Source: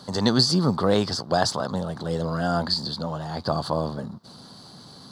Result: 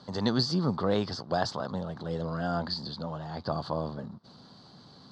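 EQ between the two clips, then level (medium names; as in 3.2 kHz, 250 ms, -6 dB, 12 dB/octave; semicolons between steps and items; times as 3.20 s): distance through air 190 m; treble shelf 5.3 kHz +9 dB; -6.0 dB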